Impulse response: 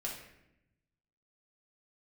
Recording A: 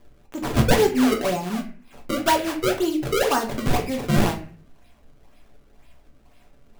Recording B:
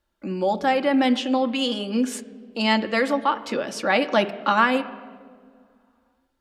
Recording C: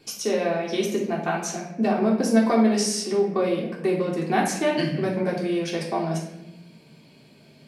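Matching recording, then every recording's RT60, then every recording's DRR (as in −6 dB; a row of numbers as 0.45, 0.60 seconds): C; 0.45 s, non-exponential decay, 0.85 s; 1.5, 5.0, −4.0 decibels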